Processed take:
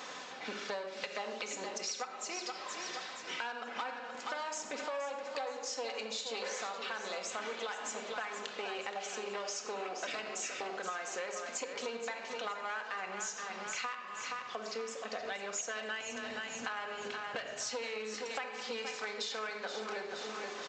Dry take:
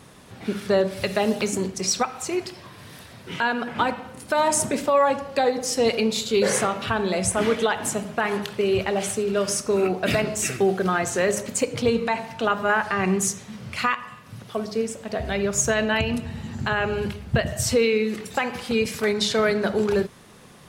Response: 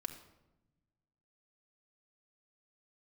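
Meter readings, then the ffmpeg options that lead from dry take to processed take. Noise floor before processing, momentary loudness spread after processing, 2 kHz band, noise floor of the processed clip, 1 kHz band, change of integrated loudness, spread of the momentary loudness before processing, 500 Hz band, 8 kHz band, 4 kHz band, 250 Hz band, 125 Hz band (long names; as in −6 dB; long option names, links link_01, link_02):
−46 dBFS, 3 LU, −12.0 dB, −46 dBFS, −13.5 dB, −15.5 dB, 9 LU, −18.0 dB, −14.0 dB, −10.5 dB, −24.0 dB, below −30 dB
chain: -filter_complex "[0:a]aresample=16000,aeval=exprs='clip(val(0),-1,0.0708)':channel_layout=same,aresample=44100,highpass=620[link_01];[1:a]atrim=start_sample=2205,afade=type=out:start_time=0.2:duration=0.01,atrim=end_sample=9261[link_02];[link_01][link_02]afir=irnorm=-1:irlink=0,areverse,acompressor=mode=upward:threshold=-36dB:ratio=2.5,areverse,aecho=1:1:473|946|1419|1892:0.316|0.133|0.0558|0.0234,acompressor=threshold=-38dB:ratio=6,volume=1dB"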